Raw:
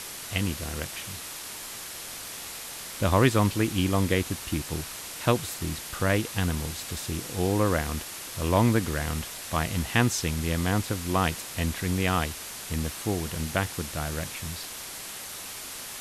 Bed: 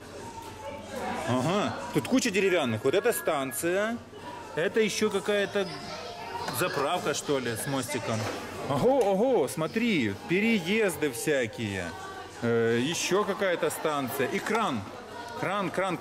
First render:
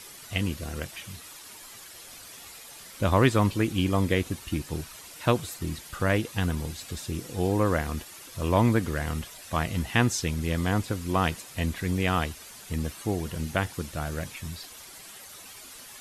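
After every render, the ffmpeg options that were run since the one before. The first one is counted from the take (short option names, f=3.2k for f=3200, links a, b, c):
-af "afftdn=nr=10:nf=-39"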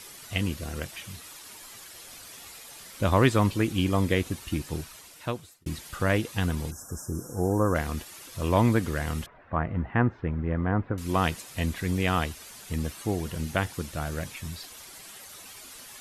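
-filter_complex "[0:a]asplit=3[a][b][c];[a]afade=t=out:st=6.7:d=0.02[d];[b]asuperstop=centerf=3000:order=20:qfactor=0.8,afade=t=in:st=6.7:d=0.02,afade=t=out:st=7.74:d=0.02[e];[c]afade=t=in:st=7.74:d=0.02[f];[d][e][f]amix=inputs=3:normalize=0,asettb=1/sr,asplit=3[g][h][i];[g]atrim=end=9.264[j];[h]atrim=start=9.26:end=10.98,asetpts=PTS-STARTPTS,afade=t=in:d=0.004:c=qsin,afade=t=out:st=1.716:d=0.004:c=qsin,lowpass=f=1.7k:w=0.5412,lowpass=f=1.7k:w=1.3066[k];[i]atrim=start=10.976[l];[j][k]acrossfade=d=0.004:c1=hsin:c2=qsin[m];[m][l]acrossfade=d=0.004:c1=qsin:c2=hsin,asplit=2[n][o];[n]atrim=end=5.66,asetpts=PTS-STARTPTS,afade=t=out:st=4.74:d=0.92[p];[o]atrim=start=5.66,asetpts=PTS-STARTPTS,afade=t=in:d=0.004:c=hsin[q];[p][q]concat=n=2:v=0:a=1"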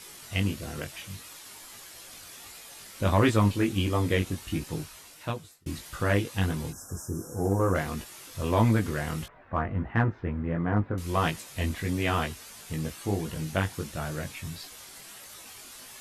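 -filter_complex "[0:a]flanger=delay=18:depth=3.5:speed=1.5,asplit=2[a][b];[b]asoftclip=type=hard:threshold=-22.5dB,volume=-10dB[c];[a][c]amix=inputs=2:normalize=0"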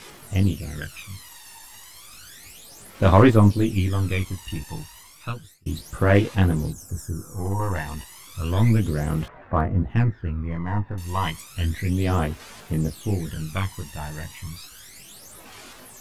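-af "aeval=exprs='if(lt(val(0),0),0.708*val(0),val(0))':c=same,aphaser=in_gain=1:out_gain=1:delay=1.1:decay=0.69:speed=0.32:type=sinusoidal"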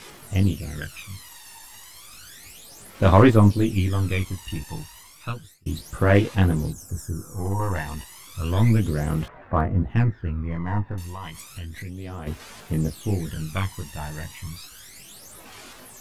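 -filter_complex "[0:a]asplit=3[a][b][c];[a]afade=t=out:st=11.02:d=0.02[d];[b]acompressor=threshold=-32dB:ratio=6:attack=3.2:release=140:knee=1:detection=peak,afade=t=in:st=11.02:d=0.02,afade=t=out:st=12.26:d=0.02[e];[c]afade=t=in:st=12.26:d=0.02[f];[d][e][f]amix=inputs=3:normalize=0"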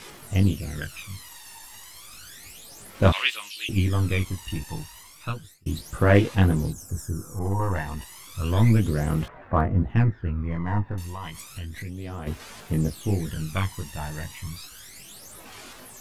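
-filter_complex "[0:a]asettb=1/sr,asplit=3[a][b][c];[a]atrim=end=3.124[d];[b]atrim=start=3.12:end=3.69,asetpts=PTS-STARTPTS,afade=t=in:d=0.004:c=qsin,afade=t=out:st=0.566:d=0.004:c=qsin,highpass=f=2.8k:t=q:w=4.7[e];[c]atrim=start=3.686[f];[d][e]acrossfade=d=0.004:c1=hsin:c2=qsin[g];[g][f]acrossfade=d=0.004:c1=qsin:c2=hsin,asettb=1/sr,asplit=3[h][i][j];[h]atrim=end=7.394[k];[i]atrim=start=7.39:end=8.02,asetpts=PTS-STARTPTS,afade=t=in:d=0.004:c=qsin,afade=t=out:st=0.626:d=0.004:c=qsin,adynamicequalizer=threshold=0.00631:dfrequency=2200:dqfactor=0.7:tfrequency=2200:tqfactor=0.7:attack=5:release=100:ratio=0.375:range=2.5:mode=cutabove:tftype=highshelf[l];[j]atrim=start=8.016[m];[k][l]acrossfade=d=0.004:c1=hsin:c2=qsin[n];[n][m]acrossfade=d=0.004:c1=qsin:c2=hsin,asettb=1/sr,asplit=3[o][p][q];[o]atrim=end=9.914[r];[p]atrim=start=9.91:end=10.4,asetpts=PTS-STARTPTS,afade=t=in:d=0.004:c=qsin,afade=t=out:st=0.486:d=0.004:c=qsin,highshelf=f=4.8k:g=-5.5[s];[q]atrim=start=10.396[t];[r][s]acrossfade=d=0.004:c1=hsin:c2=qsin[u];[u][t]acrossfade=d=0.004:c1=qsin:c2=hsin"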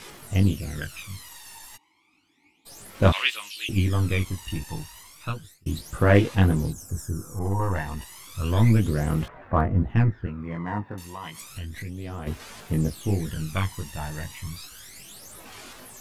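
-filter_complex "[0:a]asplit=3[a][b][c];[a]afade=t=out:st=1.76:d=0.02[d];[b]asplit=3[e][f][g];[e]bandpass=f=300:t=q:w=8,volume=0dB[h];[f]bandpass=f=870:t=q:w=8,volume=-6dB[i];[g]bandpass=f=2.24k:t=q:w=8,volume=-9dB[j];[h][i][j]amix=inputs=3:normalize=0,afade=t=in:st=1.76:d=0.02,afade=t=out:st=2.65:d=0.02[k];[c]afade=t=in:st=2.65:d=0.02[l];[d][k][l]amix=inputs=3:normalize=0,asettb=1/sr,asplit=3[m][n][o];[m]atrim=end=10.264[p];[n]atrim=start=10.26:end=11.42,asetpts=PTS-STARTPTS,afade=t=in:d=0.004:c=qsin,afade=t=out:st=1.156:d=0.004:c=qsin,highpass=160[q];[o]atrim=start=11.416[r];[p][q]acrossfade=d=0.004:c1=hsin:c2=qsin[s];[s][r]acrossfade=d=0.004:c1=qsin:c2=hsin"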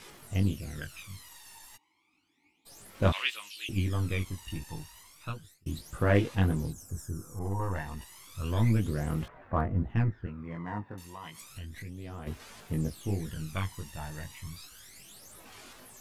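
-af "volume=-7dB"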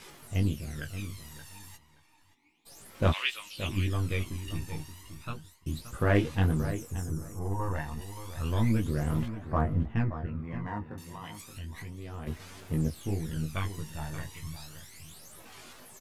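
-filter_complex "[0:a]asplit=2[a][b];[b]adelay=13,volume=-10.5dB[c];[a][c]amix=inputs=2:normalize=0,asplit=2[d][e];[e]adelay=575,lowpass=f=2.5k:p=1,volume=-11dB,asplit=2[f][g];[g]adelay=575,lowpass=f=2.5k:p=1,volume=0.17[h];[d][f][h]amix=inputs=3:normalize=0"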